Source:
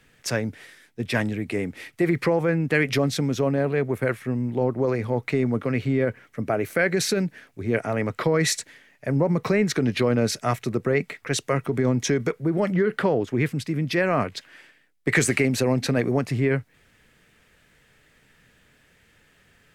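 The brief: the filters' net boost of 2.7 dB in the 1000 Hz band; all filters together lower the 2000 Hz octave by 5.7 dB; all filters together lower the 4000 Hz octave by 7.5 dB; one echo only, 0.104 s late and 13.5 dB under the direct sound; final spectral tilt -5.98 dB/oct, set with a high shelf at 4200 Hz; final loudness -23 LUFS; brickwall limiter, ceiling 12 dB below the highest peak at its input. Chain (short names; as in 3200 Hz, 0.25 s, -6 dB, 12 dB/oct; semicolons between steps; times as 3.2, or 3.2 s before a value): bell 1000 Hz +6 dB; bell 2000 Hz -7 dB; bell 4000 Hz -4.5 dB; high shelf 4200 Hz -5.5 dB; limiter -20.5 dBFS; echo 0.104 s -13.5 dB; gain +7.5 dB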